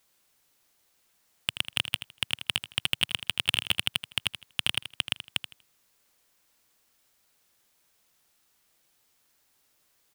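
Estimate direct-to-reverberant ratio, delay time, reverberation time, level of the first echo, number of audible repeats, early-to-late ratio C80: none, 80 ms, none, -11.5 dB, 2, none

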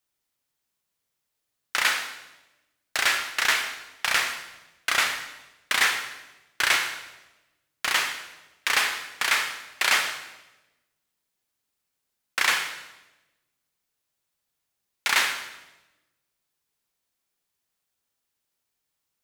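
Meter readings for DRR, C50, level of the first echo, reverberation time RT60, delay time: 6.0 dB, 8.0 dB, none, 1.1 s, none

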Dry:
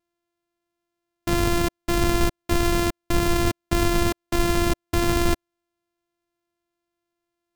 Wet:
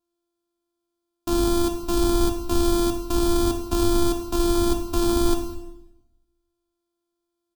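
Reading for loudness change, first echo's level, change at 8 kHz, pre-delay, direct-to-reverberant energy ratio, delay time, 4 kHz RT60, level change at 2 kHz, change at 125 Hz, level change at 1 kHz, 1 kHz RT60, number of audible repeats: +0.5 dB, -21.0 dB, +0.5 dB, 15 ms, 4.5 dB, 0.204 s, 0.75 s, -12.0 dB, -4.0 dB, -2.5 dB, 0.85 s, 1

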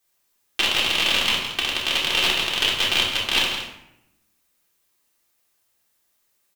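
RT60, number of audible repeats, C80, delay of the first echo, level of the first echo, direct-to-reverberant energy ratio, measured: 0.80 s, 1, 5.0 dB, 0.165 s, -8.5 dB, -6.5 dB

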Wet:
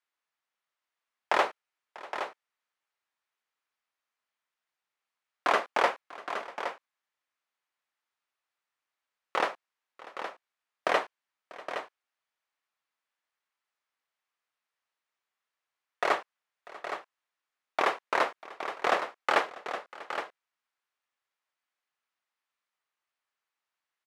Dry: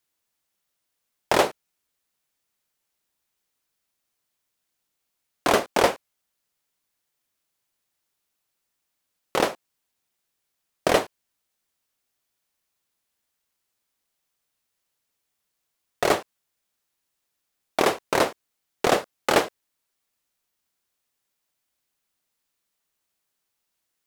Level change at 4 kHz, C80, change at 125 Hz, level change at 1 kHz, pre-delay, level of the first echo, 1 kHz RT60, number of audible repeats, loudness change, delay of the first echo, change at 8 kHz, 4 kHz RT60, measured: -7.5 dB, none, under -15 dB, -2.5 dB, none, -20.0 dB, none, 2, -7.5 dB, 0.643 s, -15.0 dB, none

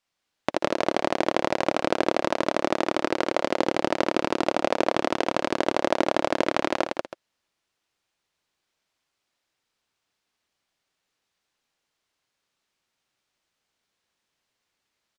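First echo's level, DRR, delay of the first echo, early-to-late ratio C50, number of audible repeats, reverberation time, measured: -9.5 dB, none, 59 ms, none, 3, none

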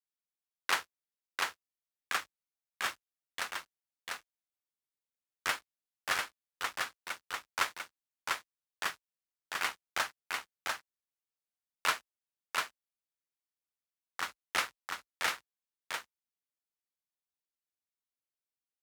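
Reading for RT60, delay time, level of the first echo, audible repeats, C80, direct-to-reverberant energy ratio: none, 0.696 s, -3.0 dB, 1, none, none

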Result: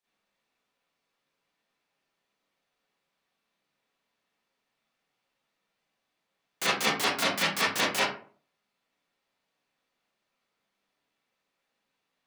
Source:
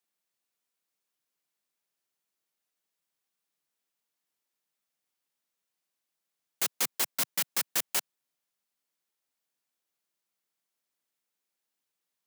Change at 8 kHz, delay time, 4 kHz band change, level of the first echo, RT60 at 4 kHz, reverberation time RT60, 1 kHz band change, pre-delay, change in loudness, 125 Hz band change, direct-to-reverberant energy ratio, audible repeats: -2.5 dB, none, +7.0 dB, none, 0.25 s, 0.45 s, +12.0 dB, 34 ms, +2.5 dB, +13.0 dB, -11.5 dB, none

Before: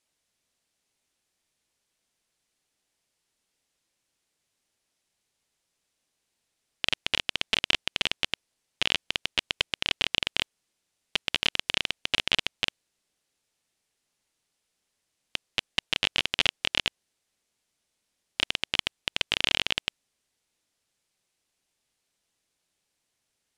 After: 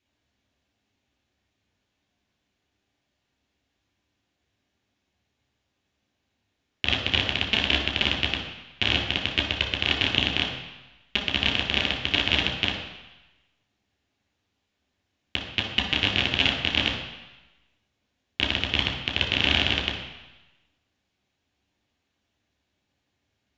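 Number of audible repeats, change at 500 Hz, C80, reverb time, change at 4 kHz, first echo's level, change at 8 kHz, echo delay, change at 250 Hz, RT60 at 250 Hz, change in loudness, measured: none, +6.0 dB, 7.0 dB, 1.0 s, +3.5 dB, none, -5.5 dB, none, +11.5 dB, 1.0 s, +4.0 dB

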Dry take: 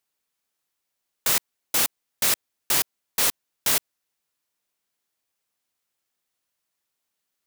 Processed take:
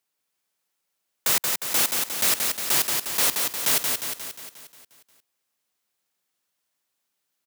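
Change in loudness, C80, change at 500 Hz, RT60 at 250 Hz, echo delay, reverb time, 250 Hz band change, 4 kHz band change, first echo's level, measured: +1.5 dB, none, +2.0 dB, none, 0.178 s, none, +2.0 dB, +2.0 dB, -4.0 dB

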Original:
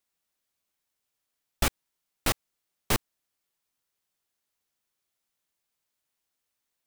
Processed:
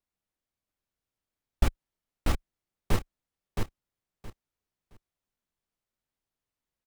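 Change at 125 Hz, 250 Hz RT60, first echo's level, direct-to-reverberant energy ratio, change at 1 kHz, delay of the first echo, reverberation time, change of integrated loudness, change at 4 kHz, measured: +4.0 dB, none, -4.5 dB, none, -4.0 dB, 0.669 s, none, -4.5 dB, -9.0 dB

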